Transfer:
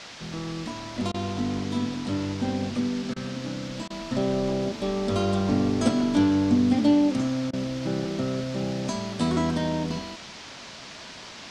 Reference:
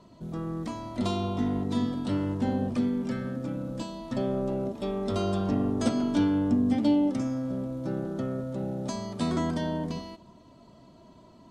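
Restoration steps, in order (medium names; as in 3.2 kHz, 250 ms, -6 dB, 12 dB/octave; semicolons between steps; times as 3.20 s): interpolate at 1.12/3.14/3.88/7.51 s, 21 ms; noise print and reduce 11 dB; trim 0 dB, from 3.89 s -3.5 dB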